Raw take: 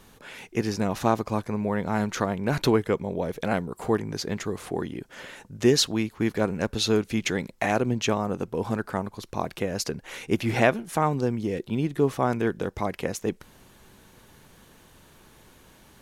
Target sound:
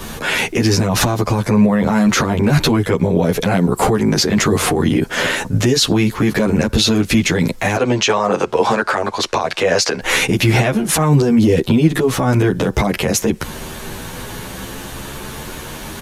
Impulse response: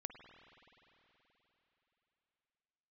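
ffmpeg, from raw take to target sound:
-filter_complex "[0:a]asettb=1/sr,asplit=3[s0][s1][s2];[s0]atrim=end=7.764[s3];[s1]atrim=start=7.76:end=10.01,asetpts=PTS-STARTPTS,afade=t=in:d=0.004:c=qsin,afade=t=out:st=2.246:d=0.004:c=qsin,acrossover=split=410 8000:gain=0.141 1 0.0794[s4][s5][s6];[s4][s5][s6]amix=inputs=3:normalize=0[s7];[s2]atrim=start=10.006[s8];[s3][s7]acrossfade=d=0.004:c1=hsin:c2=qsin[s9];[s9][s8]acrossfade=d=0.004:c1=qsin:c2=hsin,acompressor=threshold=0.0447:ratio=4,aresample=32000,aresample=44100,acrossover=split=210|3000[s10][s11][s12];[s11]acompressor=threshold=0.0251:ratio=6[s13];[s10][s13][s12]amix=inputs=3:normalize=0,alimiter=level_in=26.6:limit=0.891:release=50:level=0:latency=1,asplit=2[s14][s15];[s15]adelay=10.7,afreqshift=0.45[s16];[s14][s16]amix=inputs=2:normalize=1,volume=0.891"

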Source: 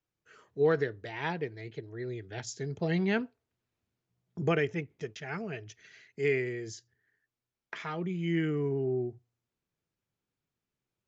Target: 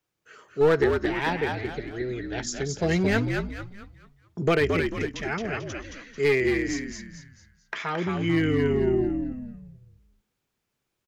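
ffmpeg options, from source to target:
-filter_complex "[0:a]lowshelf=f=160:g=-7.5,aeval=exprs='clip(val(0),-1,0.0501)':c=same,asplit=2[s0][s1];[s1]asplit=5[s2][s3][s4][s5][s6];[s2]adelay=221,afreqshift=-66,volume=0.596[s7];[s3]adelay=442,afreqshift=-132,volume=0.232[s8];[s4]adelay=663,afreqshift=-198,volume=0.0902[s9];[s5]adelay=884,afreqshift=-264,volume=0.0355[s10];[s6]adelay=1105,afreqshift=-330,volume=0.0138[s11];[s7][s8][s9][s10][s11]amix=inputs=5:normalize=0[s12];[s0][s12]amix=inputs=2:normalize=0,volume=2.51"

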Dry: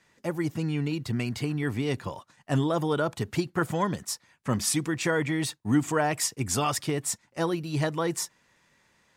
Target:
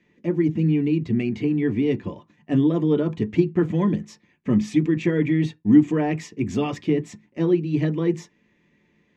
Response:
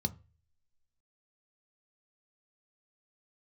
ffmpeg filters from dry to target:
-filter_complex "[0:a]lowpass=3300,asplit=2[s0][s1];[1:a]atrim=start_sample=2205,afade=t=out:st=0.25:d=0.01,atrim=end_sample=11466,asetrate=88200,aresample=44100[s2];[s1][s2]afir=irnorm=-1:irlink=0,volume=0.891[s3];[s0][s3]amix=inputs=2:normalize=0"

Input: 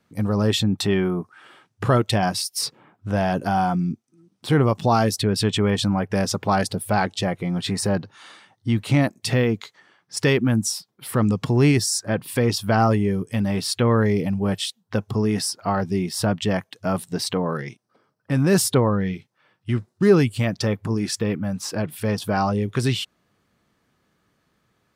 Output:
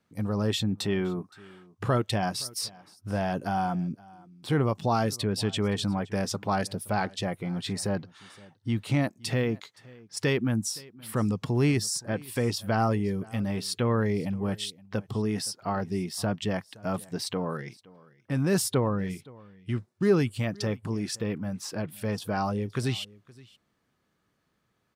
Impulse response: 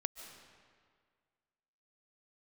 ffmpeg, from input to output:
-af "aecho=1:1:519:0.0708,volume=0.447"

